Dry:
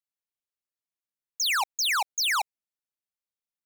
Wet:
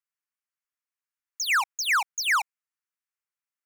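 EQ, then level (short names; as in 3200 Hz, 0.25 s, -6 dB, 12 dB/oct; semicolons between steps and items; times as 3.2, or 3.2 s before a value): HPF 1100 Hz 24 dB/oct; bell 3800 Hz -12.5 dB 0.64 oct; high shelf 6300 Hz -11.5 dB; +6.5 dB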